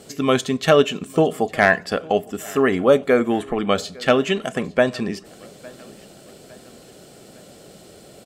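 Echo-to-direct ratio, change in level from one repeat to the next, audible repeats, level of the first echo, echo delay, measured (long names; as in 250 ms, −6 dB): −22.5 dB, −6.0 dB, 2, −23.5 dB, 857 ms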